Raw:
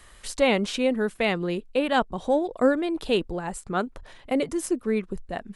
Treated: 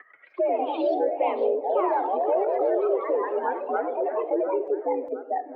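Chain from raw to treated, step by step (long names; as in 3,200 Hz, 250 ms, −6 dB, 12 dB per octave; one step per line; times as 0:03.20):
expanding power law on the bin magnitudes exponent 2.6
harmonic generator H 3 −31 dB, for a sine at −10.5 dBFS
on a send at −20 dB: convolution reverb RT60 0.25 s, pre-delay 61 ms
on the sum: brickwall limiter −22 dBFS, peak gain reduction 11 dB
echo with a time of its own for lows and highs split 560 Hz, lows 207 ms, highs 706 ms, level −13.5 dB
in parallel at −1.5 dB: downward compressor, threshold −37 dBFS, peak gain reduction 12 dB
on the sum: flanger 0.39 Hz, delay 8.9 ms, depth 9.9 ms, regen −81%
single-sideband voice off tune +66 Hz 290–2,300 Hz
delay with pitch and tempo change per echo 134 ms, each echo +2 semitones, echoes 3
multiband upward and downward compressor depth 40%
level +6.5 dB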